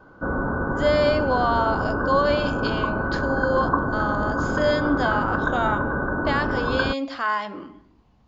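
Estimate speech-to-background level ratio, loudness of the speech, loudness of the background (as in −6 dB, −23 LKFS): −0.5 dB, −25.5 LKFS, −25.0 LKFS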